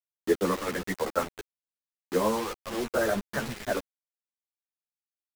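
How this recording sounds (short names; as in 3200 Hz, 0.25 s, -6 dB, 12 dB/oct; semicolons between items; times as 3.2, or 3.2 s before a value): chopped level 1.5 Hz, depth 60%, duty 85%; a quantiser's noise floor 6-bit, dither none; a shimmering, thickened sound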